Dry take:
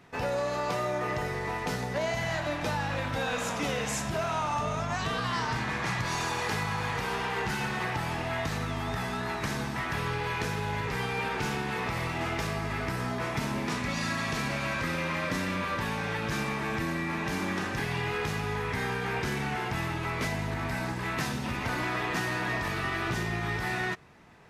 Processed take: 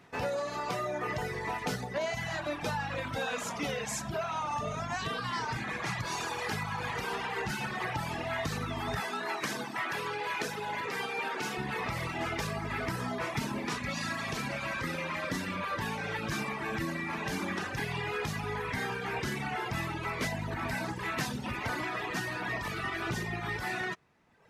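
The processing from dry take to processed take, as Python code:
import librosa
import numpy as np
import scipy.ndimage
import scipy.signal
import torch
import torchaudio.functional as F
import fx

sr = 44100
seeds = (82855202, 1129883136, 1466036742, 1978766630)

y = fx.highpass(x, sr, hz=250.0, slope=12, at=(9.0, 11.58))
y = fx.dereverb_blind(y, sr, rt60_s=1.3)
y = fx.low_shelf(y, sr, hz=68.0, db=-6.5)
y = fx.rider(y, sr, range_db=10, speed_s=0.5)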